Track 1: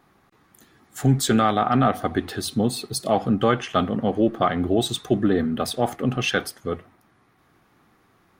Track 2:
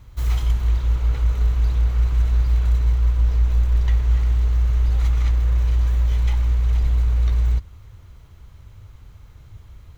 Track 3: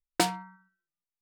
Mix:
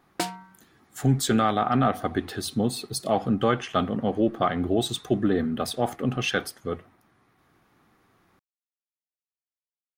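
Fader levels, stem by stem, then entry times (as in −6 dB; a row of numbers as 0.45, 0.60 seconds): −3.0 dB, muted, −3.0 dB; 0.00 s, muted, 0.00 s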